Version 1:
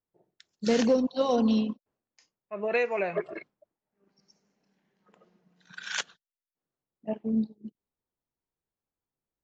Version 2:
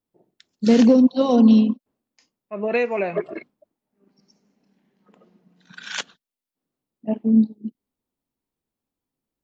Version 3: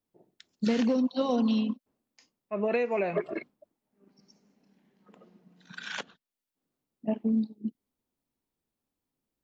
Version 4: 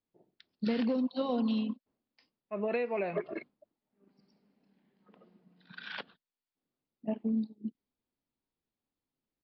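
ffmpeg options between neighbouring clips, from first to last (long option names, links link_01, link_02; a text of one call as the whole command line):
ffmpeg -i in.wav -af "equalizer=frequency=250:width_type=o:width=0.67:gain=9,equalizer=frequency=1600:width_type=o:width=0.67:gain=-3,equalizer=frequency=6300:width_type=o:width=0.67:gain=-3,volume=4.5dB" out.wav
ffmpeg -i in.wav -filter_complex "[0:a]acrossover=split=920|3600[link_01][link_02][link_03];[link_01]acompressor=threshold=-25dB:ratio=4[link_04];[link_02]acompressor=threshold=-36dB:ratio=4[link_05];[link_03]acompressor=threshold=-49dB:ratio=4[link_06];[link_04][link_05][link_06]amix=inputs=3:normalize=0,volume=-1dB" out.wav
ffmpeg -i in.wav -af "aresample=11025,aresample=44100,volume=-4.5dB" out.wav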